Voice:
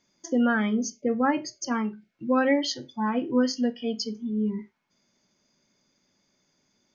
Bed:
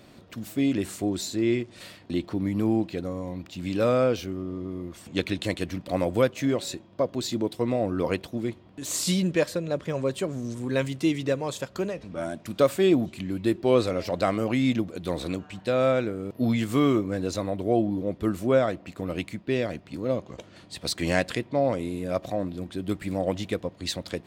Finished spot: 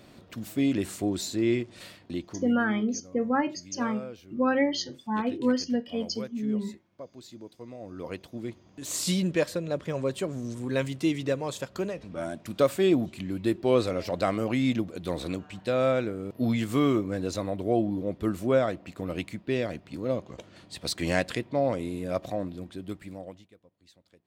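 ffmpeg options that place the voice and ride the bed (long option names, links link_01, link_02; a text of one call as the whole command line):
ffmpeg -i stem1.wav -i stem2.wav -filter_complex "[0:a]adelay=2100,volume=-2dB[link_01];[1:a]volume=14.5dB,afade=type=out:start_time=1.77:duration=0.82:silence=0.149624,afade=type=in:start_time=7.77:duration=1.29:silence=0.16788,afade=type=out:start_time=22.27:duration=1.21:silence=0.0473151[link_02];[link_01][link_02]amix=inputs=2:normalize=0" out.wav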